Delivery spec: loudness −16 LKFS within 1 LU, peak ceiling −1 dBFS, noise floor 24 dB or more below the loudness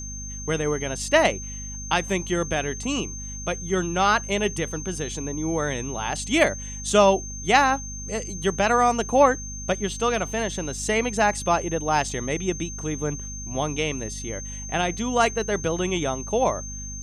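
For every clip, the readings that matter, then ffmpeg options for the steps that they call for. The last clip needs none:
mains hum 50 Hz; hum harmonics up to 250 Hz; level of the hum −34 dBFS; interfering tone 6,300 Hz; level of the tone −35 dBFS; integrated loudness −24.5 LKFS; sample peak −4.5 dBFS; target loudness −16.0 LKFS
→ -af "bandreject=frequency=50:width_type=h:width=6,bandreject=frequency=100:width_type=h:width=6,bandreject=frequency=150:width_type=h:width=6,bandreject=frequency=200:width_type=h:width=6,bandreject=frequency=250:width_type=h:width=6"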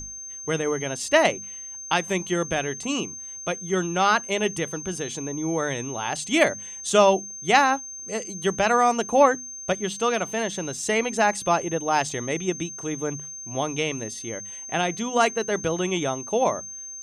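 mains hum none found; interfering tone 6,300 Hz; level of the tone −35 dBFS
→ -af "bandreject=frequency=6300:width=30"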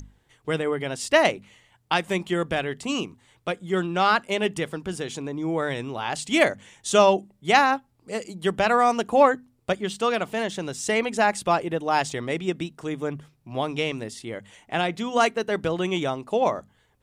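interfering tone none found; integrated loudness −24.5 LKFS; sample peak −4.5 dBFS; target loudness −16.0 LKFS
→ -af "volume=8.5dB,alimiter=limit=-1dB:level=0:latency=1"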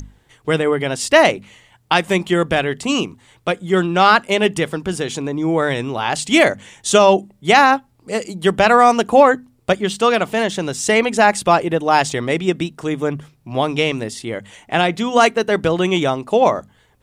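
integrated loudness −16.5 LKFS; sample peak −1.0 dBFS; background noise floor −57 dBFS

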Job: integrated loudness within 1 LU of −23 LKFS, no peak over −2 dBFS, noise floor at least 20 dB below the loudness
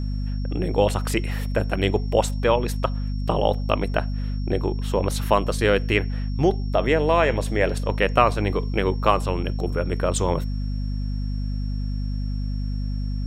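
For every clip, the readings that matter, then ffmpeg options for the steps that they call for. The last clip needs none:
mains hum 50 Hz; hum harmonics up to 250 Hz; level of the hum −23 dBFS; interfering tone 5,500 Hz; level of the tone −48 dBFS; integrated loudness −24.0 LKFS; sample peak −1.0 dBFS; target loudness −23.0 LKFS
→ -af "bandreject=frequency=50:width_type=h:width=4,bandreject=frequency=100:width_type=h:width=4,bandreject=frequency=150:width_type=h:width=4,bandreject=frequency=200:width_type=h:width=4,bandreject=frequency=250:width_type=h:width=4"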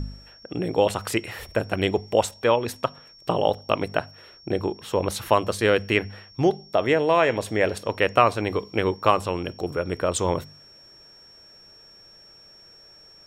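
mains hum none found; interfering tone 5,500 Hz; level of the tone −48 dBFS
→ -af "bandreject=frequency=5500:width=30"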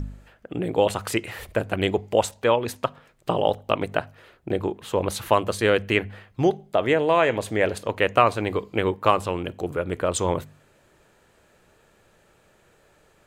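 interfering tone none found; integrated loudness −24.0 LKFS; sample peak −1.5 dBFS; target loudness −23.0 LKFS
→ -af "volume=1dB,alimiter=limit=-2dB:level=0:latency=1"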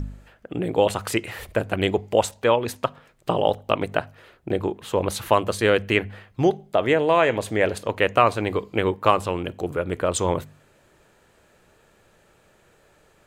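integrated loudness −23.0 LKFS; sample peak −2.0 dBFS; background noise floor −59 dBFS

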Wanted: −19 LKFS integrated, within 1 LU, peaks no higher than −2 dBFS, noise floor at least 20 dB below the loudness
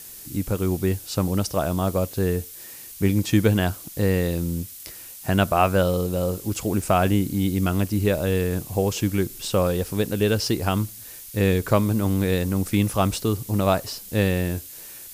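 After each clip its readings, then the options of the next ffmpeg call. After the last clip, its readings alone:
background noise floor −41 dBFS; target noise floor −44 dBFS; integrated loudness −23.5 LKFS; sample peak −5.5 dBFS; target loudness −19.0 LKFS
→ -af "afftdn=noise_reduction=6:noise_floor=-41"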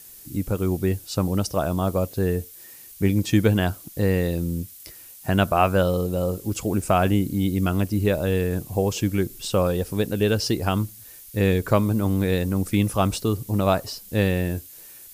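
background noise floor −45 dBFS; integrated loudness −23.5 LKFS; sample peak −5.5 dBFS; target loudness −19.0 LKFS
→ -af "volume=4.5dB,alimiter=limit=-2dB:level=0:latency=1"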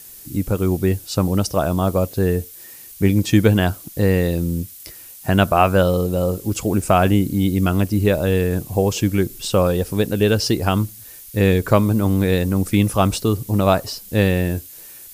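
integrated loudness −19.0 LKFS; sample peak −2.0 dBFS; background noise floor −40 dBFS

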